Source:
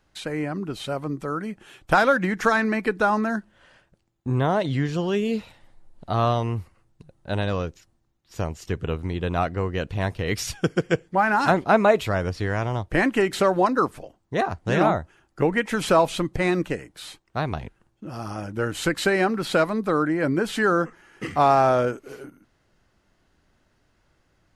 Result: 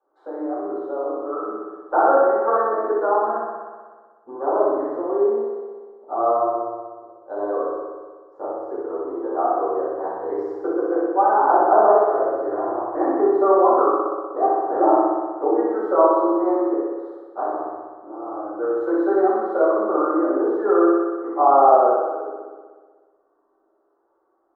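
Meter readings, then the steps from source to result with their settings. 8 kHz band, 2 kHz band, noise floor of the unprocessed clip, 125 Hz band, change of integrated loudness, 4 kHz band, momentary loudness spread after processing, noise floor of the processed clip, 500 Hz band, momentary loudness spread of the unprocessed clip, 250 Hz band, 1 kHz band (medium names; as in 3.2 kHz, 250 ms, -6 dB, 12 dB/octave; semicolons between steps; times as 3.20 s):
under -35 dB, -10.5 dB, -68 dBFS, under -30 dB, +3.5 dB, under -35 dB, 16 LU, -66 dBFS, +5.5 dB, 13 LU, +1.5 dB, +5.5 dB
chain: elliptic band-pass 340–1200 Hz, stop band 40 dB; on a send: flutter echo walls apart 10.6 m, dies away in 1.5 s; on the sum: simulated room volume 300 m³, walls furnished, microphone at 7.5 m; trim -10 dB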